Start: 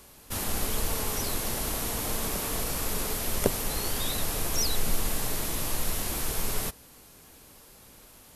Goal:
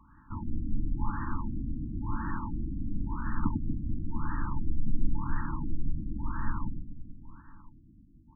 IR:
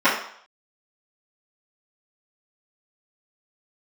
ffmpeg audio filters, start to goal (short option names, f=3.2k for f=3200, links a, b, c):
-af "aecho=1:1:100|240|436|710.4|1095:0.631|0.398|0.251|0.158|0.1,afftfilt=real='re*(1-between(b*sr/4096,340,850))':imag='im*(1-between(b*sr/4096,340,850))':win_size=4096:overlap=0.75,afftfilt=real='re*lt(b*sr/1024,310*pow(1900/310,0.5+0.5*sin(2*PI*0.96*pts/sr)))':imag='im*lt(b*sr/1024,310*pow(1900/310,0.5+0.5*sin(2*PI*0.96*pts/sr)))':win_size=1024:overlap=0.75"